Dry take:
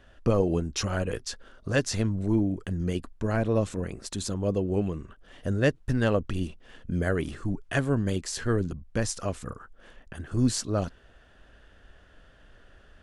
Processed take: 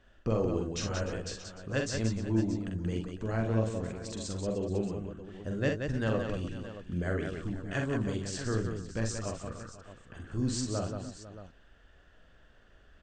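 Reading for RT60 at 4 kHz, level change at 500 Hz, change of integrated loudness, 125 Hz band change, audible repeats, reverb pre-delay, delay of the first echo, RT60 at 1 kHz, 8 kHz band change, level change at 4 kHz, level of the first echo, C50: none, -5.0 dB, -5.0 dB, -4.5 dB, 5, none, 45 ms, none, -5.0 dB, -5.0 dB, -4.5 dB, none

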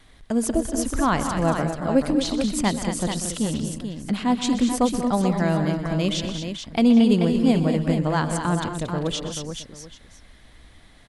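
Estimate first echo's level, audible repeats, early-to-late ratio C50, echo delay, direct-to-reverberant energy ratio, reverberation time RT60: -14.5 dB, 5, none, 0.126 s, none, none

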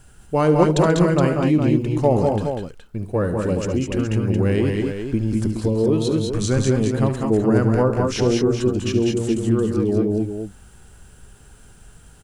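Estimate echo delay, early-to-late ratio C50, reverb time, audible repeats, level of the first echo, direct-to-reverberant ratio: 72 ms, none, none, 4, -12.5 dB, none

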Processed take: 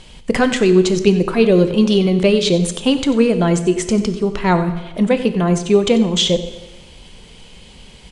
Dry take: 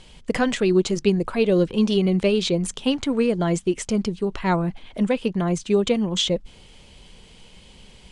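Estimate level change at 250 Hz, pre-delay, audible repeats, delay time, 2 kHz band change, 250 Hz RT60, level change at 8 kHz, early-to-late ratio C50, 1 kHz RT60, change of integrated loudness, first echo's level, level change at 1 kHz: +6.5 dB, 7 ms, 1, 92 ms, +6.5 dB, 1.2 s, +6.5 dB, 10.5 dB, 1.2 s, +6.5 dB, -14.5 dB, +6.5 dB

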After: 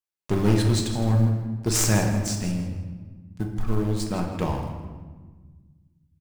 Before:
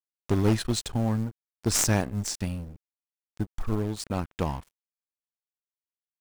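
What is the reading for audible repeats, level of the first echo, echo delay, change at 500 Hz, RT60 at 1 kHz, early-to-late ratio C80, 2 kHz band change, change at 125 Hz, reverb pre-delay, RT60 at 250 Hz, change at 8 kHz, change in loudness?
1, -12.0 dB, 0.162 s, +3.0 dB, 1.3 s, 6.0 dB, +3.0 dB, +6.0 dB, 5 ms, 2.2 s, +1.5 dB, +3.5 dB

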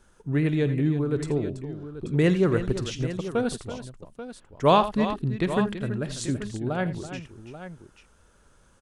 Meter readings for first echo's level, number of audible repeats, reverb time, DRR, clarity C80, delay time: -18.5 dB, 4, none, none, none, 50 ms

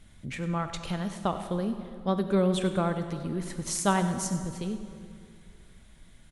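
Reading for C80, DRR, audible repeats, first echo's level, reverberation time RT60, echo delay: 9.0 dB, 8.0 dB, 1, -15.0 dB, 2.3 s, 98 ms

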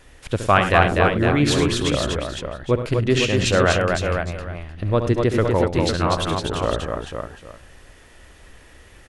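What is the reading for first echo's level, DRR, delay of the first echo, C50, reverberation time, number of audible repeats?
-10.0 dB, none, 69 ms, none, none, 5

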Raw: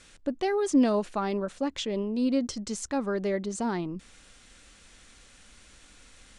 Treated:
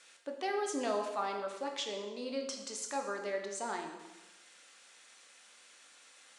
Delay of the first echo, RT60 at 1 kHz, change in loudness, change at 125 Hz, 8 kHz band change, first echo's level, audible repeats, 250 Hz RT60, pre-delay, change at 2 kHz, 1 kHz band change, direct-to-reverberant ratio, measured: none, 1.1 s, -8.5 dB, under -20 dB, -3.0 dB, none, none, 1.2 s, 7 ms, -2.5 dB, -3.0 dB, 2.5 dB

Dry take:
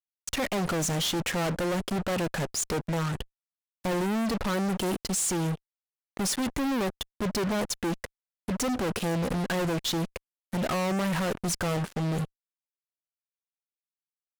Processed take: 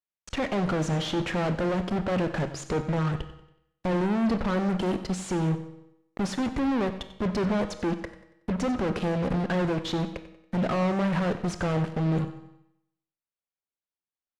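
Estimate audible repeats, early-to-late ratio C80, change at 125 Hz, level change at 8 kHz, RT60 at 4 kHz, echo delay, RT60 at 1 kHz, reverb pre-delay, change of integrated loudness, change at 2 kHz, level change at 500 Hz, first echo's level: 3, 12.0 dB, +3.0 dB, -12.0 dB, 0.75 s, 93 ms, 0.80 s, 23 ms, +1.0 dB, -1.0 dB, +2.0 dB, -16.0 dB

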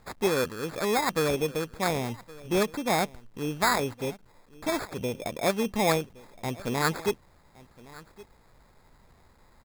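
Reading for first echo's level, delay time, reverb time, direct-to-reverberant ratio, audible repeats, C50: -21.0 dB, 1.117 s, none, none, 1, none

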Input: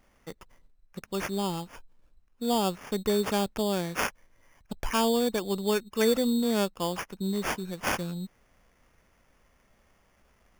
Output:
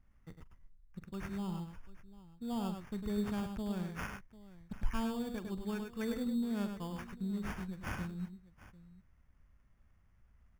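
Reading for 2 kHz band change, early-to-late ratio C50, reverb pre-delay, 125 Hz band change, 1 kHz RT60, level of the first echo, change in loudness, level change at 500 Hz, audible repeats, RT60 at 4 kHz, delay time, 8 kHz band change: -12.0 dB, none, none, -5.0 dB, none, -16.5 dB, -10.5 dB, -16.0 dB, 3, none, 44 ms, -19.0 dB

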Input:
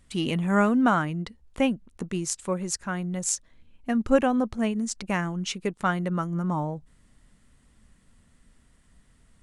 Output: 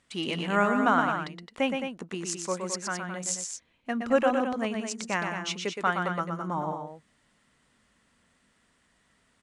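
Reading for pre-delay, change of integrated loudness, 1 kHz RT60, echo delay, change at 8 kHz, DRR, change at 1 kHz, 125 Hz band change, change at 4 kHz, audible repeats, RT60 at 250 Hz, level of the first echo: none, -2.5 dB, none, 0.119 s, -2.5 dB, none, +1.0 dB, -8.0 dB, +1.0 dB, 2, none, -5.5 dB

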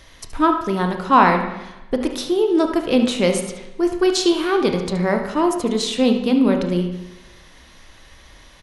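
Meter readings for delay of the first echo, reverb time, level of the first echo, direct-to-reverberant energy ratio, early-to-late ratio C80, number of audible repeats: 73 ms, 1.0 s, -11.5 dB, 4.0 dB, 9.0 dB, 1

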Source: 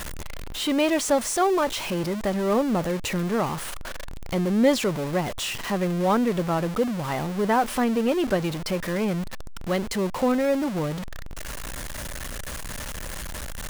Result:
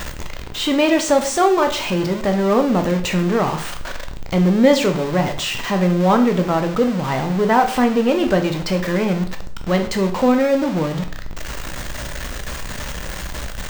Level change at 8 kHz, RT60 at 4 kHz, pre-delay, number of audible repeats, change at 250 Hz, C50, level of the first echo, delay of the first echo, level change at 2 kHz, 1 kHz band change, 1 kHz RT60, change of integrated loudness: +3.0 dB, 0.45 s, 11 ms, none, +7.0 dB, 11.0 dB, none, none, +6.5 dB, +7.0 dB, 0.45 s, +7.0 dB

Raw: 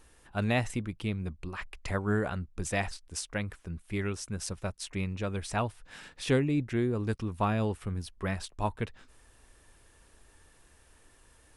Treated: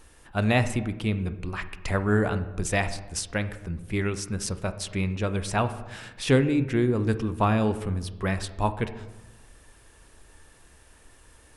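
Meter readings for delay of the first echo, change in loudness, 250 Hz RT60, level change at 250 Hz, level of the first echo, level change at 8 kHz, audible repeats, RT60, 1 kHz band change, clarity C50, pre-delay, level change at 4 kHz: none, +6.0 dB, 1.3 s, +6.0 dB, none, +5.5 dB, none, 1.1 s, +6.0 dB, 13.0 dB, 19 ms, +5.5 dB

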